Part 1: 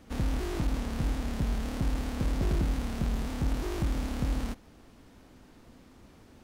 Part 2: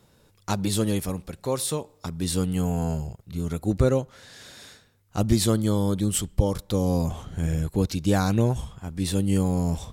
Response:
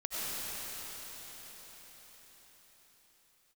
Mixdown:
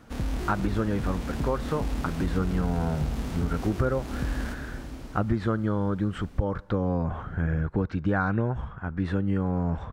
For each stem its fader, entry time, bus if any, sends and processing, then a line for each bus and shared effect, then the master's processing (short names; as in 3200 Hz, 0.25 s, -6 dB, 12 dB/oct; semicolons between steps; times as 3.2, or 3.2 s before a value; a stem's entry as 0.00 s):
-1.5 dB, 0.00 s, send -10 dB, echo send -13.5 dB, dry
+1.5 dB, 0.00 s, no send, no echo send, synth low-pass 1500 Hz, resonance Q 3.6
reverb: on, RT60 5.7 s, pre-delay 55 ms
echo: feedback echo 1.021 s, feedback 30%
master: compressor 3:1, threshold -23 dBFS, peak gain reduction 9 dB